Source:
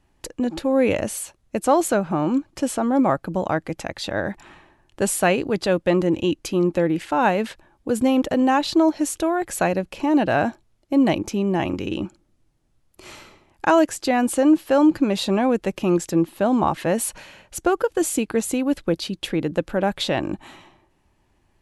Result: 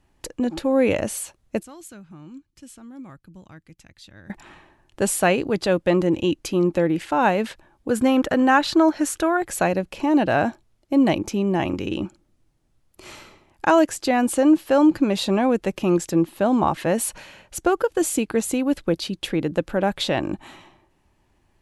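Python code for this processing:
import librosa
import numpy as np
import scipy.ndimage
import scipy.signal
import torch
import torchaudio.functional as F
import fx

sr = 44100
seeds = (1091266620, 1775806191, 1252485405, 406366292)

y = fx.tone_stack(x, sr, knobs='6-0-2', at=(1.63, 4.3))
y = fx.peak_eq(y, sr, hz=1500.0, db=9.0, octaves=0.76, at=(7.91, 9.37))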